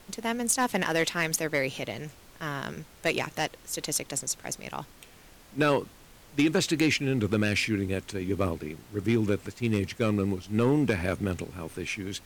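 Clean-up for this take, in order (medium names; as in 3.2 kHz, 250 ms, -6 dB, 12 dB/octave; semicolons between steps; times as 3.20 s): clip repair -16 dBFS; noise print and reduce 20 dB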